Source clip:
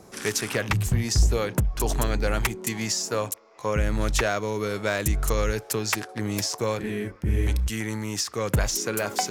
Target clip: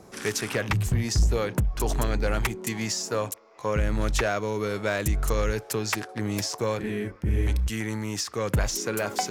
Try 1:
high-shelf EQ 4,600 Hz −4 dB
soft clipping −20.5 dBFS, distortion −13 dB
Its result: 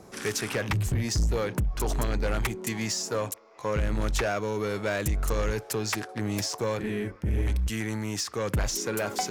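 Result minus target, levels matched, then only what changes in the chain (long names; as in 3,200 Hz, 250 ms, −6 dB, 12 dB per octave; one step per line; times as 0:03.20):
soft clipping: distortion +10 dB
change: soft clipping −13 dBFS, distortion −23 dB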